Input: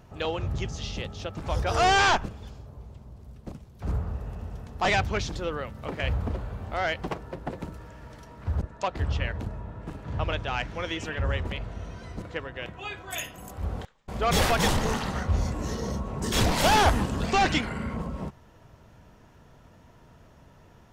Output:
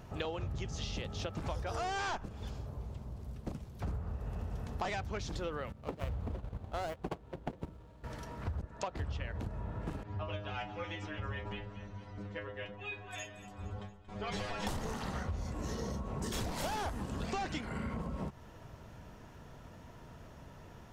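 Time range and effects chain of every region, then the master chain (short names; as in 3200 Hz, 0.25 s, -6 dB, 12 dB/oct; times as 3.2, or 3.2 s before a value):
5.72–8.04 median filter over 25 samples + gate -34 dBFS, range -12 dB
10.03–14.67 air absorption 91 m + metallic resonator 100 Hz, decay 0.33 s, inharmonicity 0.002 + echo with dull and thin repeats by turns 0.115 s, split 940 Hz, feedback 70%, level -11 dB
whole clip: dynamic EQ 2800 Hz, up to -4 dB, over -37 dBFS, Q 0.83; compressor 10:1, threshold -36 dBFS; gain +1.5 dB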